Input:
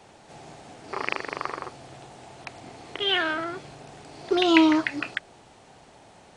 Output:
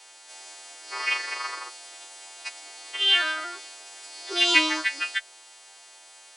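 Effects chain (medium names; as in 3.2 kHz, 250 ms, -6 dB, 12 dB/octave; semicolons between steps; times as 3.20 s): partials quantised in pitch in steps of 2 st; elliptic high-pass 310 Hz, stop band 40 dB; tilt shelf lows -9 dB; Chebyshev shaper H 6 -44 dB, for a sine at 1.5 dBFS; trim -5 dB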